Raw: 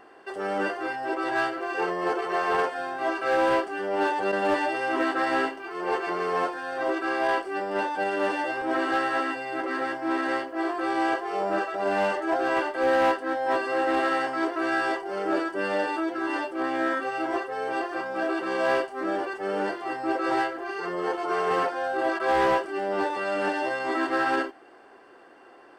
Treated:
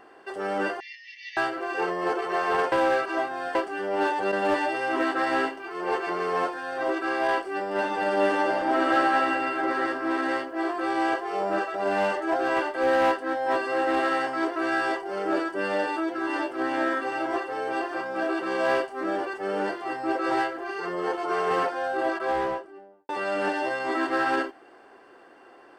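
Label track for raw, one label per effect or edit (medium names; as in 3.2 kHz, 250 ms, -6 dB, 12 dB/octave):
0.800000	1.370000	brick-wall FIR band-pass 1.7–6.4 kHz
2.720000	3.550000	reverse
7.730000	9.810000	reverb throw, RT60 2.4 s, DRR 1 dB
16.010000	16.460000	echo throw 380 ms, feedback 65%, level -6 dB
21.920000	23.090000	studio fade out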